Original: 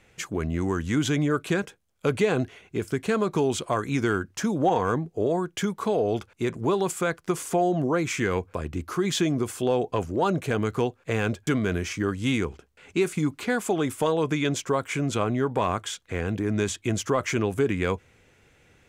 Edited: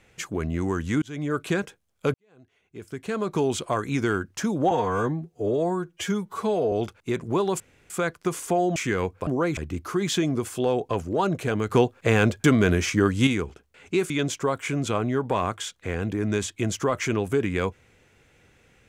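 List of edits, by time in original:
1.02–1.41 fade in
2.14–3.41 fade in quadratic
4.71–6.05 stretch 1.5×
6.93 insert room tone 0.30 s
7.79–8.09 move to 8.6
10.74–12.3 gain +6 dB
13.13–14.36 cut

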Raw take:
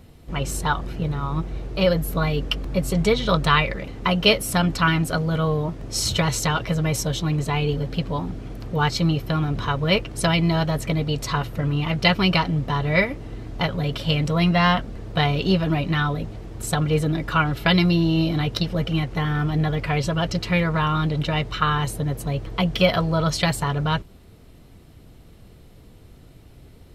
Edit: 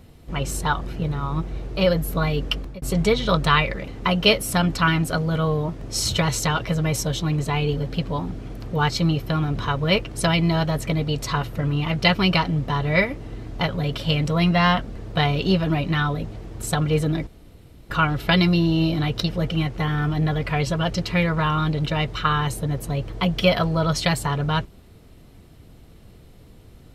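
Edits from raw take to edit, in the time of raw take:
2.57–2.82 fade out
17.27 insert room tone 0.63 s

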